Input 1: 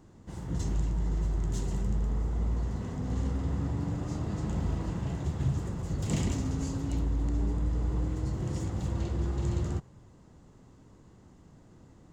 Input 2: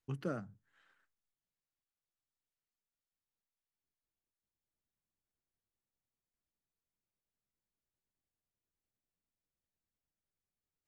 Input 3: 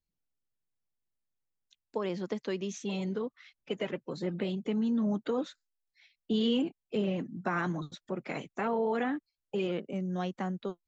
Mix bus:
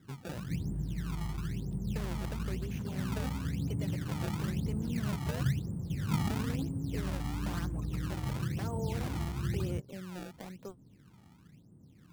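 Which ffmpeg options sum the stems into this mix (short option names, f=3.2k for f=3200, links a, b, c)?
-filter_complex "[0:a]bandpass=f=160:t=q:w=1.2:csg=0,volume=0.5dB[a];[1:a]volume=-2.5dB[b];[2:a]asubboost=boost=6:cutoff=77,volume=-7dB[c];[b][c]amix=inputs=2:normalize=0,alimiter=level_in=8.5dB:limit=-24dB:level=0:latency=1:release=243,volume=-8.5dB,volume=0dB[d];[a][d]amix=inputs=2:normalize=0,acrusher=samples=24:mix=1:aa=0.000001:lfo=1:lforange=38.4:lforate=1"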